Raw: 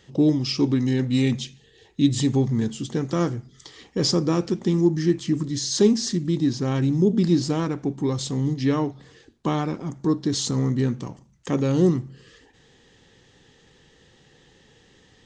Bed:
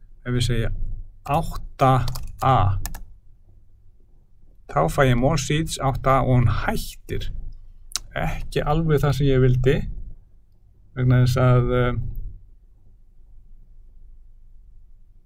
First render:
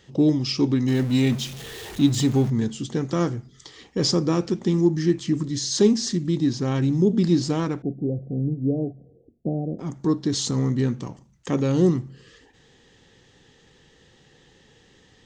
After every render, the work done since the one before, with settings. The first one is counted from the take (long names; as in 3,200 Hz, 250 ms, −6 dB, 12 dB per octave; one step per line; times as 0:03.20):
0:00.88–0:02.50: converter with a step at zero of −32.5 dBFS
0:07.82–0:09.79: Chebyshev low-pass with heavy ripple 720 Hz, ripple 3 dB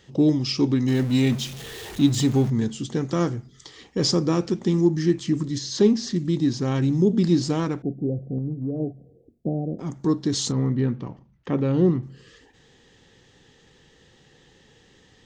0:05.58–0:06.16: high-frequency loss of the air 100 metres
0:08.38–0:08.80: downward compressor 3 to 1, threshold −25 dBFS
0:10.52–0:12.03: high-frequency loss of the air 290 metres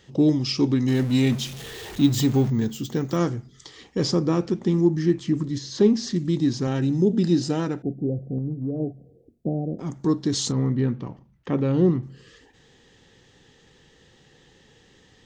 0:01.70–0:03.17: bad sample-rate conversion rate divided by 2×, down filtered, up hold
0:04.03–0:05.94: high-shelf EQ 3,500 Hz −7.5 dB
0:06.67–0:07.87: notch comb filter 1,100 Hz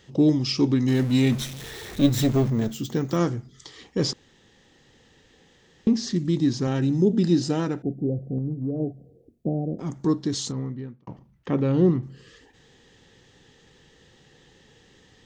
0:01.37–0:02.74: lower of the sound and its delayed copy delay 0.53 ms
0:04.13–0:05.87: fill with room tone
0:10.03–0:11.07: fade out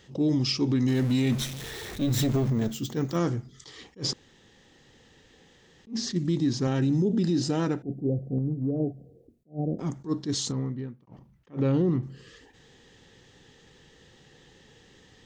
brickwall limiter −17 dBFS, peak gain reduction 10.5 dB
level that may rise only so fast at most 290 dB per second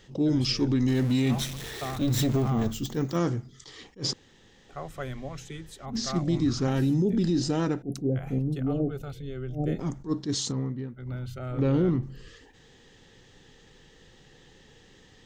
mix in bed −18.5 dB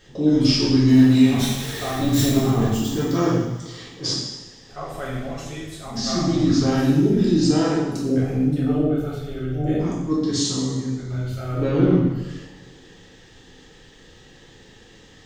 coupled-rooms reverb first 1 s, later 2.5 s, DRR −6.5 dB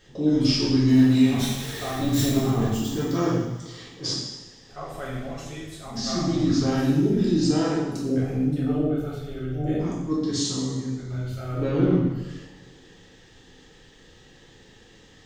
level −3.5 dB